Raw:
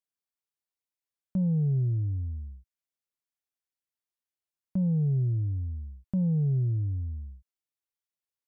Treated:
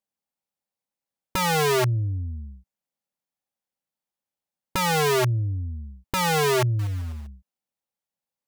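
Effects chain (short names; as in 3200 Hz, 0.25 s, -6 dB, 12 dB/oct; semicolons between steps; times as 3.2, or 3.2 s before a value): small resonant body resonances 200/550/780 Hz, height 11 dB, ringing for 25 ms; wrapped overs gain 17.5 dB; 6.79–7.27 short-mantissa float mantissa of 2-bit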